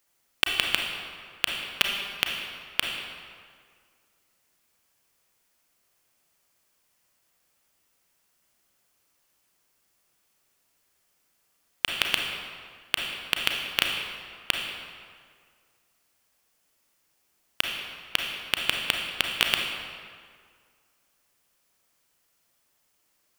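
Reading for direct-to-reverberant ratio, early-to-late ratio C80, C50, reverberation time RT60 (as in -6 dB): 1.0 dB, 4.0 dB, 2.5 dB, 2.0 s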